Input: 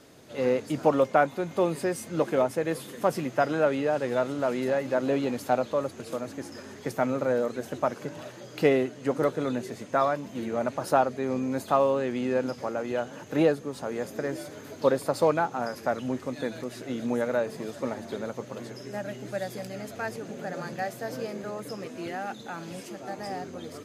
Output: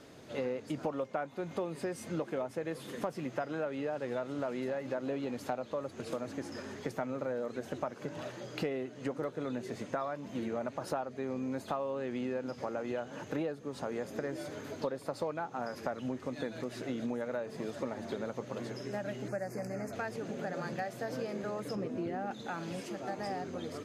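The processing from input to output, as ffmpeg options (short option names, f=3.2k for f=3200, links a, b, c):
-filter_complex "[0:a]asettb=1/sr,asplit=3[a][b][c];[a]atrim=end=19.284[d];[b]atrim=start=19.28:end=19.93,asetpts=PTS-STARTPTS,afade=t=in:d=0.004:c=qsin,afade=t=out:st=0.646:d=0.004:c=qsin,asuperstop=centerf=3400:order=4:qfactor=1.1[e];[c]atrim=start=19.926[f];[d][e]acrossfade=d=0.004:c1=hsin:c2=qsin[g];[g][f]acrossfade=d=0.004:c1=qsin:c2=hsin,asettb=1/sr,asplit=3[h][i][j];[h]atrim=end=21.754[k];[i]atrim=start=21.75:end=22.31,asetpts=PTS-STARTPTS,afade=t=in:d=0.004:c=qsin,afade=t=out:st=0.556:d=0.004:c=qsin,tiltshelf=f=900:g=7[l];[j]atrim=start=22.306[m];[k][l]acrossfade=d=0.004:c1=hsin:c2=qsin[n];[n][m]acrossfade=d=0.004:c1=qsin:c2=hsin,highshelf=f=8.6k:g=-11,acompressor=threshold=-33dB:ratio=6"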